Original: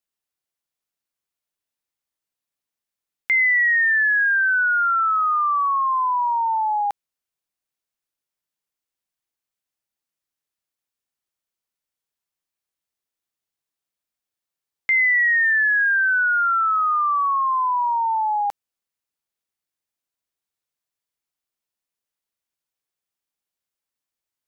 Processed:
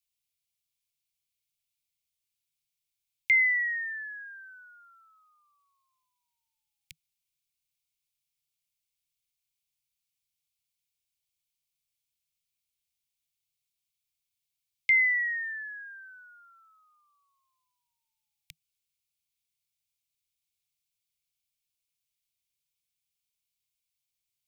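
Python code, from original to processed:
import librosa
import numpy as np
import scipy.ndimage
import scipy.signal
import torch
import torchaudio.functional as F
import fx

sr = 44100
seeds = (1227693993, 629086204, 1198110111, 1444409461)

y = scipy.signal.sosfilt(scipy.signal.cheby1(5, 1.0, [160.0, 2200.0], 'bandstop', fs=sr, output='sos'), x)
y = y * 10.0 ** (2.5 / 20.0)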